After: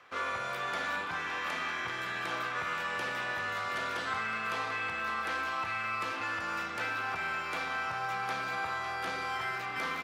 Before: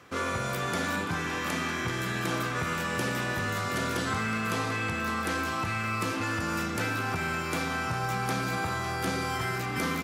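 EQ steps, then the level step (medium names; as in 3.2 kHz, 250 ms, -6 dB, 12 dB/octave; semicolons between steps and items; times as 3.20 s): three-band isolator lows -16 dB, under 540 Hz, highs -14 dB, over 4.4 kHz; -1.5 dB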